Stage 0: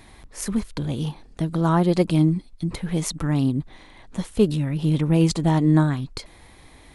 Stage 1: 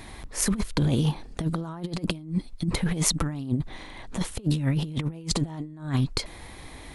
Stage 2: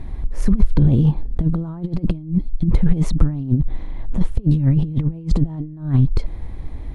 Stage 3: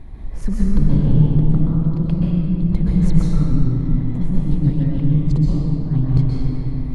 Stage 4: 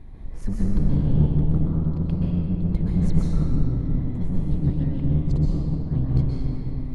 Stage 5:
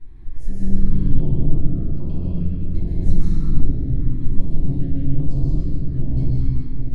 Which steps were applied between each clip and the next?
compressor with a negative ratio -26 dBFS, ratio -0.5
tilt EQ -4.5 dB/octave; trim -3 dB
reverberation RT60 3.4 s, pre-delay 119 ms, DRR -5.5 dB; trim -6.5 dB
octave divider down 1 oct, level -4 dB; trim -6.5 dB
simulated room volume 140 m³, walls mixed, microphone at 2.8 m; step-sequenced notch 2.5 Hz 600–1800 Hz; trim -11.5 dB

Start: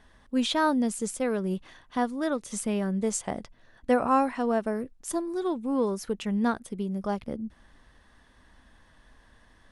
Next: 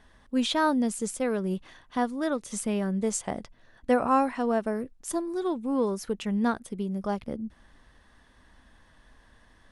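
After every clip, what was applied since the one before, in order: no audible change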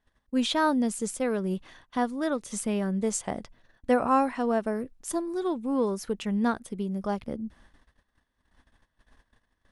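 gate -54 dBFS, range -20 dB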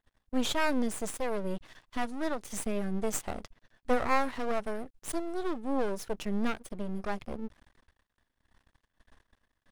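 half-wave rectifier; trim +1 dB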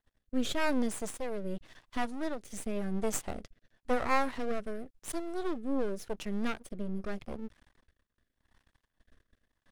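rotary cabinet horn 0.9 Hz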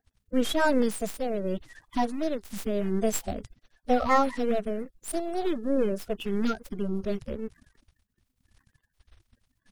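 coarse spectral quantiser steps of 30 dB; trim +5 dB

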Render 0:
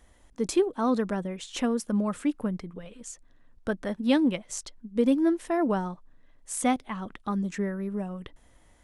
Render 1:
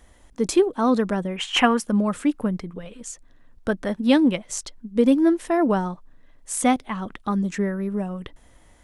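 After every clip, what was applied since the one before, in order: time-frequency box 1.36–1.79 s, 700–3300 Hz +12 dB; trim +5.5 dB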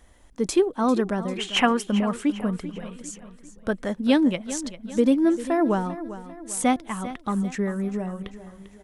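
feedback delay 396 ms, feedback 46%, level -14 dB; trim -2 dB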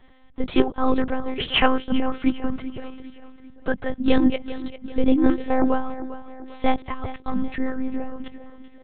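monotone LPC vocoder at 8 kHz 260 Hz; trim +3 dB

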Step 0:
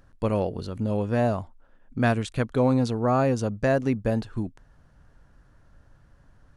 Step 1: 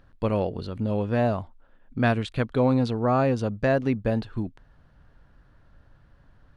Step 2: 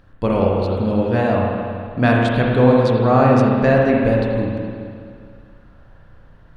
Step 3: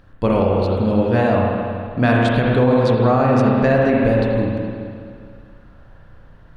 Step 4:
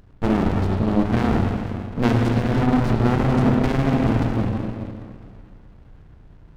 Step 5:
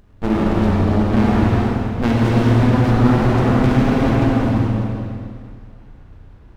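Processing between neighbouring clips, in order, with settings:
resonant high shelf 5.1 kHz -7.5 dB, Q 1.5
spring tank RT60 2.2 s, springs 32/52 ms, chirp 55 ms, DRR -2.5 dB; trim +5 dB
loudness maximiser +7 dB; trim -5.5 dB
sliding maximum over 65 samples
gated-style reverb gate 460 ms flat, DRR -3.5 dB; trim -1 dB

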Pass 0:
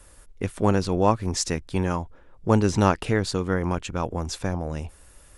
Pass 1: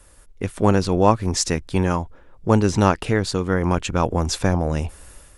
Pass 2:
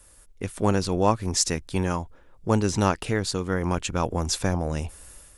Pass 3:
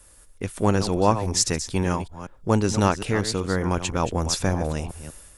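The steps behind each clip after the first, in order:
level rider gain up to 9 dB
treble shelf 4.4 kHz +7.5 dB; trim -5.5 dB
chunks repeated in reverse 189 ms, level -11 dB; trim +1.5 dB

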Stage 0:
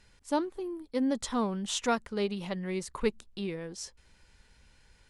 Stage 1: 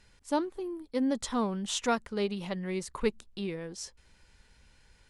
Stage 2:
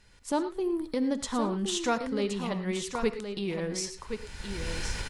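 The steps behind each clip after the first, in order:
no audible change
recorder AGC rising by 25 dB/s; delay 1070 ms -7.5 dB; reverberation, pre-delay 3 ms, DRR 10.5 dB

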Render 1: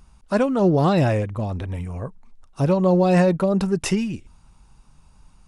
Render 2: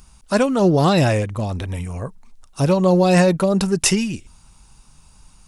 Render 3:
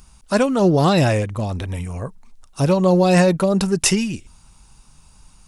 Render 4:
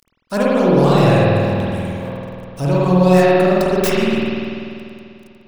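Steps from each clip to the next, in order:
treble shelf 3.2 kHz +12 dB; trim +2 dB
no audible change
tracing distortion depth 0.2 ms; small samples zeroed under -38.5 dBFS; spring tank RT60 2.6 s, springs 49 ms, chirp 40 ms, DRR -7.5 dB; trim -4.5 dB

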